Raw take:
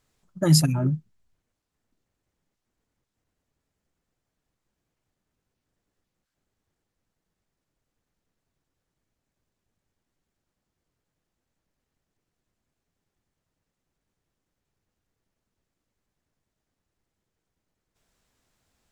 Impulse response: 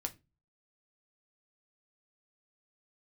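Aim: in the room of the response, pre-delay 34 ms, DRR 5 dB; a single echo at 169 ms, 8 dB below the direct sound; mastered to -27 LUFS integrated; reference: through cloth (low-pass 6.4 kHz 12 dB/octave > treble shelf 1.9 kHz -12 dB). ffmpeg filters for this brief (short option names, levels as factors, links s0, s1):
-filter_complex "[0:a]aecho=1:1:169:0.398,asplit=2[s0][s1];[1:a]atrim=start_sample=2205,adelay=34[s2];[s1][s2]afir=irnorm=-1:irlink=0,volume=0.596[s3];[s0][s3]amix=inputs=2:normalize=0,lowpass=6400,highshelf=f=1900:g=-12,volume=0.531"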